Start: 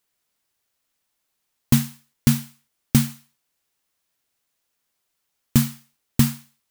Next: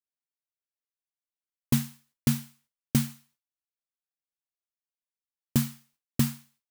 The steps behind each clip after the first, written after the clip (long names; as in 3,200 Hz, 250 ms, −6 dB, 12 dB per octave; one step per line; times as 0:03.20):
noise gate with hold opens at −54 dBFS
level −7 dB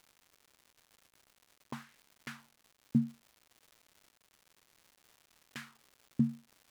LFO wah 0.6 Hz 210–2,300 Hz, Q 2.1
surface crackle 270 per second −48 dBFS
level −1 dB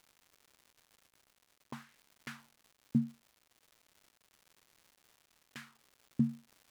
shaped tremolo triangle 0.5 Hz, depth 35%